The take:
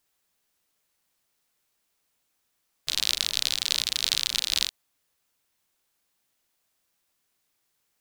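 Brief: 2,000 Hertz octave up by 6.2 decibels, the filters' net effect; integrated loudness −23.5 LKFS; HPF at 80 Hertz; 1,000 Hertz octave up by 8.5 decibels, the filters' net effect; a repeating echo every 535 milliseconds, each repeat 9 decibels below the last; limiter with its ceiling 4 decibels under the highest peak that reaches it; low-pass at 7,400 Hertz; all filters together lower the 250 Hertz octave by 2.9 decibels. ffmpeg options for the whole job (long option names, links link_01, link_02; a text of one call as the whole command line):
ffmpeg -i in.wav -af "highpass=80,lowpass=7400,equalizer=frequency=250:width_type=o:gain=-4.5,equalizer=frequency=1000:width_type=o:gain=9,equalizer=frequency=2000:width_type=o:gain=6,alimiter=limit=-4.5dB:level=0:latency=1,aecho=1:1:535|1070|1605|2140:0.355|0.124|0.0435|0.0152,volume=2dB" out.wav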